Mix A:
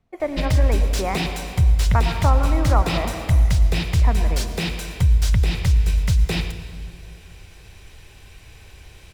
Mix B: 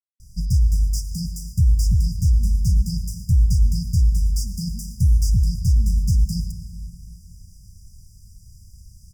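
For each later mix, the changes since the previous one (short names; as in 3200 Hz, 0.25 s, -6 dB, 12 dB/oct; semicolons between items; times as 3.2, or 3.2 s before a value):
speech: entry +1.70 s; master: add brick-wall FIR band-stop 230–4700 Hz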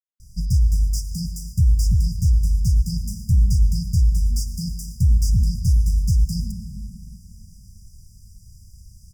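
speech: entry +0.65 s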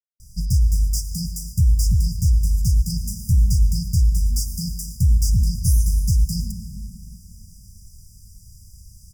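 speech: add tone controls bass -2 dB, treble +14 dB; master: add high shelf 6100 Hz +7.5 dB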